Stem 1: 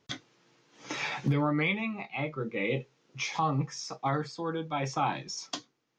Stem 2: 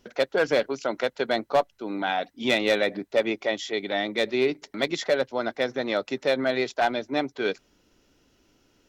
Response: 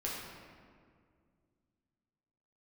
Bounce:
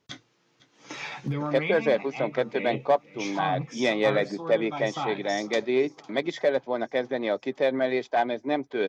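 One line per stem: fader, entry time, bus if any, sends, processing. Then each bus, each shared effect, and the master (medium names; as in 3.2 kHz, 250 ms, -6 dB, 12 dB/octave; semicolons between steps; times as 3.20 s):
-2.5 dB, 0.00 s, no send, echo send -19.5 dB, hum notches 60/120 Hz
+0.5 dB, 1.35 s, no send, no echo send, low-pass 2 kHz 6 dB/octave; comb of notches 1.4 kHz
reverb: none
echo: feedback delay 505 ms, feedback 59%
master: none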